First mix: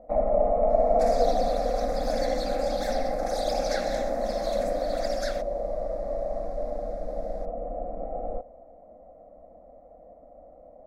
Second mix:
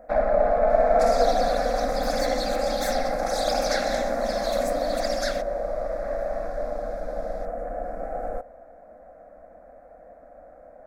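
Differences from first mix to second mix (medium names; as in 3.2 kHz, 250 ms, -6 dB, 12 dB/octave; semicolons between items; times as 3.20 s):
speech: add tilt EQ +4 dB/octave; first sound: remove boxcar filter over 28 samples; second sound +6.0 dB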